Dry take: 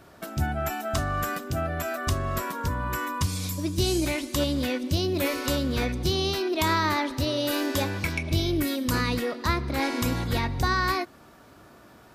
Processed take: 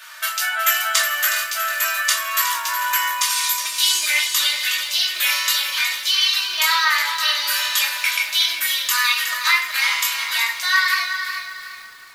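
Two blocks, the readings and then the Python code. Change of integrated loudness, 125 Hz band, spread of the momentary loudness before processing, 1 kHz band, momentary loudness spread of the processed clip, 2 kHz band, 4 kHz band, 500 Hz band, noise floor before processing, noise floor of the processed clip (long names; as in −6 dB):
+9.0 dB, below −35 dB, 5 LU, +5.5 dB, 5 LU, +13.0 dB, +14.5 dB, −12.5 dB, −52 dBFS, −37 dBFS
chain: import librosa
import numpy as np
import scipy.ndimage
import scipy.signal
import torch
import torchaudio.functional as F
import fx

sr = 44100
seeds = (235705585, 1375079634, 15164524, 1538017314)

y = scipy.signal.sosfilt(scipy.signal.butter(4, 1400.0, 'highpass', fs=sr, output='sos'), x)
y = y + 0.67 * np.pad(y, (int(3.3 * sr / 1000.0), 0))[:len(y)]
y = fx.rider(y, sr, range_db=10, speed_s=2.0)
y = fx.echo_feedback(y, sr, ms=366, feedback_pct=37, wet_db=-9.0)
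y = fx.room_shoebox(y, sr, seeds[0], volume_m3=320.0, walls='furnished', distance_m=3.0)
y = fx.echo_crushed(y, sr, ms=439, feedback_pct=35, bits=7, wet_db=-13.5)
y = y * 10.0 ** (7.5 / 20.0)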